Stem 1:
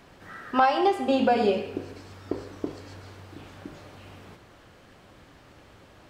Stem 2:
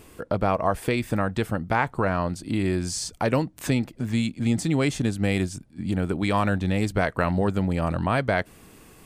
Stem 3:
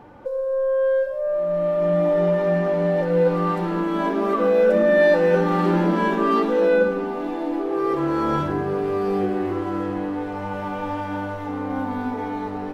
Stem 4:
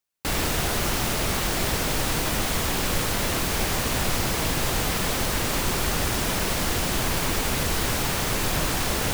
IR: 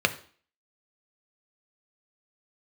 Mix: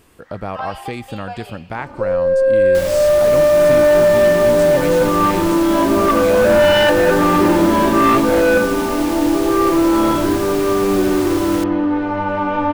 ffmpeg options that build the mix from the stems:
-filter_complex "[0:a]highpass=frequency=700:width=0.5412,highpass=frequency=700:width=1.3066,volume=-5.5dB[link_01];[1:a]volume=-3.5dB[link_02];[2:a]lowpass=4800,aecho=1:1:3.3:0.72,aeval=exprs='0.75*sin(PI/2*2.51*val(0)/0.75)':channel_layout=same,adelay=1750,volume=-5.5dB[link_03];[3:a]adelay=2500,volume=-3.5dB[link_04];[link_01][link_02][link_03][link_04]amix=inputs=4:normalize=0"

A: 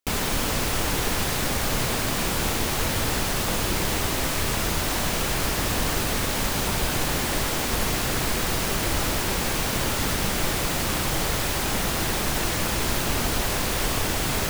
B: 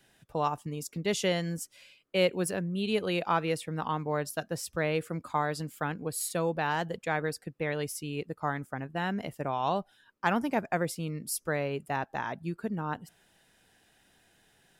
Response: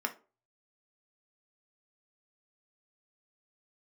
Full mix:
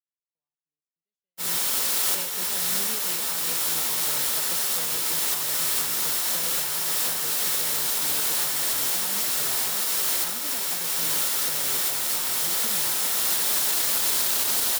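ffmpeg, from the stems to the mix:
-filter_complex "[0:a]highpass=frequency=680:poles=1,aexciter=amount=3.2:drive=3.1:freq=3400,adelay=1300,volume=1dB,asplit=3[link_01][link_02][link_03];[link_02]volume=-18dB[link_04];[link_03]volume=-20dB[link_05];[1:a]highshelf=frequency=3900:gain=9,acrossover=split=190|3200[link_06][link_07][link_08];[link_06]acompressor=threshold=-44dB:ratio=4[link_09];[link_07]acompressor=threshold=-34dB:ratio=4[link_10];[link_08]acompressor=threshold=-35dB:ratio=4[link_11];[link_09][link_10][link_11]amix=inputs=3:normalize=0,volume=-7.5dB,asplit=2[link_12][link_13];[link_13]apad=whole_len=696765[link_14];[link_01][link_14]sidechaincompress=threshold=-46dB:ratio=6:attack=6.3:release=1150[link_15];[2:a]atrim=start_sample=2205[link_16];[link_04][link_16]afir=irnorm=-1:irlink=0[link_17];[link_05]aecho=0:1:114:1[link_18];[link_15][link_12][link_17][link_18]amix=inputs=4:normalize=0,agate=range=-59dB:threshold=-26dB:ratio=16:detection=peak,alimiter=limit=-13.5dB:level=0:latency=1:release=73"

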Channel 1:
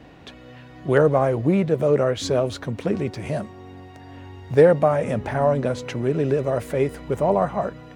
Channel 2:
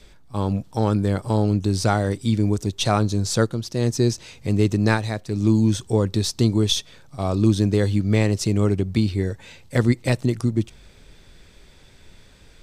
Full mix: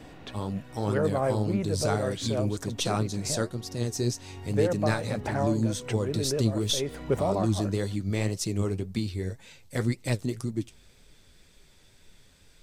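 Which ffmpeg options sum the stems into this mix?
ffmpeg -i stem1.wav -i stem2.wav -filter_complex "[0:a]volume=-1dB[link_01];[1:a]highshelf=frequency=5600:gain=9.5,flanger=delay=3.8:depth=9.1:regen=55:speed=1.9:shape=triangular,volume=-5dB,asplit=2[link_02][link_03];[link_03]apad=whole_len=350995[link_04];[link_01][link_04]sidechaincompress=threshold=-36dB:ratio=8:attack=35:release=295[link_05];[link_05][link_02]amix=inputs=2:normalize=0" out.wav

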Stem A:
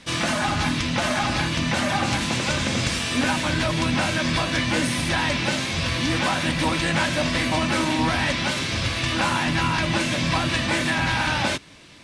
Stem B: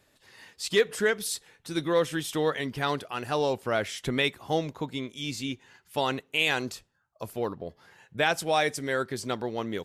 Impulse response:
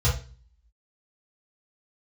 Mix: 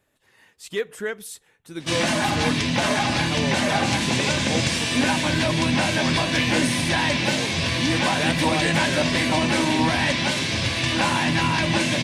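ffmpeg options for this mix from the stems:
-filter_complex "[0:a]highpass=90,equalizer=frequency=1300:width=5.2:gain=-8.5,adelay=1800,volume=2dB[link_01];[1:a]equalizer=frequency=4700:width=1.8:gain=-7.5,volume=-3.5dB[link_02];[link_01][link_02]amix=inputs=2:normalize=0"

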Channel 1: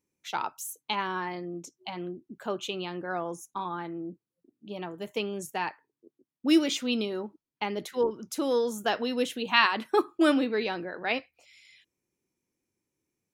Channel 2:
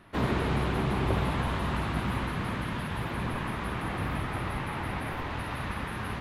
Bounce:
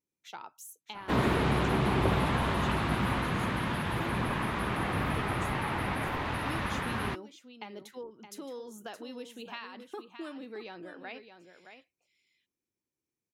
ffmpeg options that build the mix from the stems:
ffmpeg -i stem1.wav -i stem2.wav -filter_complex "[0:a]acompressor=threshold=-30dB:ratio=6,volume=-9.5dB,asplit=2[link_01][link_02];[link_02]volume=-9.5dB[link_03];[1:a]lowshelf=frequency=79:gain=-7.5,acontrast=73,adelay=950,volume=-4.5dB[link_04];[link_03]aecho=0:1:619:1[link_05];[link_01][link_04][link_05]amix=inputs=3:normalize=0" out.wav

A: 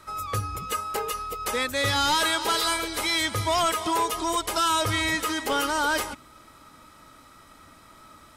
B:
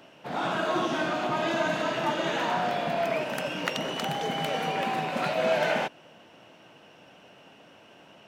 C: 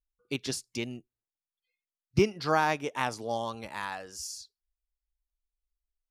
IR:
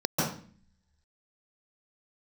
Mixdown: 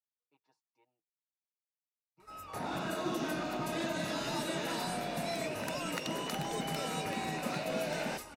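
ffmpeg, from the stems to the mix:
-filter_complex "[0:a]acrossover=split=230|3000[link_01][link_02][link_03];[link_01]acompressor=threshold=-39dB:ratio=6[link_04];[link_04][link_02][link_03]amix=inputs=3:normalize=0,adelay=2200,volume=-15dB[link_05];[1:a]adelay=2300,volume=-3.5dB[link_06];[2:a]bandpass=frequency=900:width_type=q:width=8.6:csg=0,aecho=1:1:6.4:0.96,volume=-18dB[link_07];[link_05][link_06][link_07]amix=inputs=3:normalize=0,bandreject=frequency=3200:width=7.3,acrossover=split=400|3000[link_08][link_09][link_10];[link_09]acompressor=threshold=-38dB:ratio=6[link_11];[link_08][link_11][link_10]amix=inputs=3:normalize=0"

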